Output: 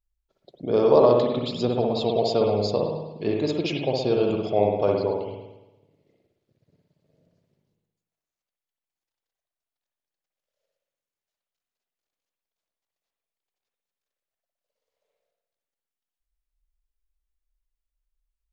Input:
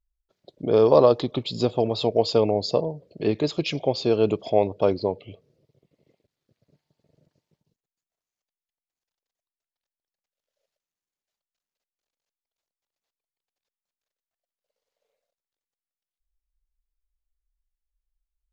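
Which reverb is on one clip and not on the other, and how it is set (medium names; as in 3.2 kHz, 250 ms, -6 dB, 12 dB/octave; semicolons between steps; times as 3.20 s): spring tank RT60 1 s, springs 58 ms, chirp 50 ms, DRR 0 dB; trim -3 dB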